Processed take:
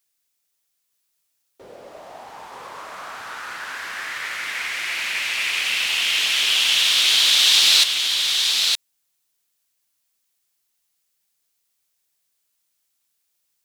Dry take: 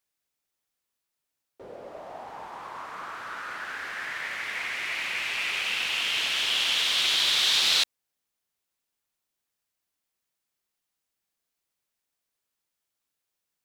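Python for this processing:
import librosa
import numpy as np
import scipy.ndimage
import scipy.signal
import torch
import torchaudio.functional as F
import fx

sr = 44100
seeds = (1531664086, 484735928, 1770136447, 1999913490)

y = fx.high_shelf(x, sr, hz=2600.0, db=11.0)
y = y + 10.0 ** (-4.5 / 20.0) * np.pad(y, (int(916 * sr / 1000.0), 0))[:len(y)]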